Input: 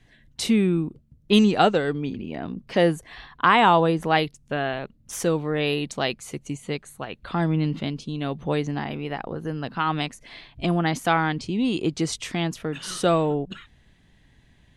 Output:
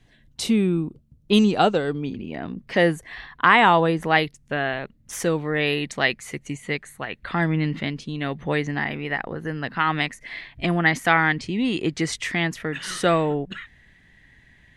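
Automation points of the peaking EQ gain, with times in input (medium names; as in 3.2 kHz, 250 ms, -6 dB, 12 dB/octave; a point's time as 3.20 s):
peaking EQ 1.9 kHz 0.55 oct
1.94 s -3.5 dB
2.52 s +7.5 dB
5.40 s +7.5 dB
5.82 s +13.5 dB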